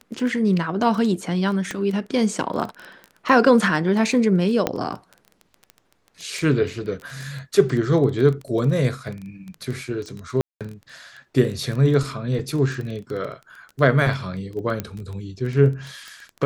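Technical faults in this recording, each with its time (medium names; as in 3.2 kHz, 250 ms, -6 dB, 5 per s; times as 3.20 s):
crackle 12 per s -27 dBFS
1.71 s: pop -14 dBFS
4.67 s: pop -6 dBFS
10.41–10.61 s: dropout 197 ms
12.39 s: dropout 3 ms
14.80 s: pop -12 dBFS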